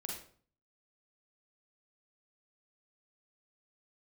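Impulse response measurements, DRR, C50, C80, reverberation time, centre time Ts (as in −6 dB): −1.5 dB, 2.0 dB, 7.5 dB, 0.50 s, 41 ms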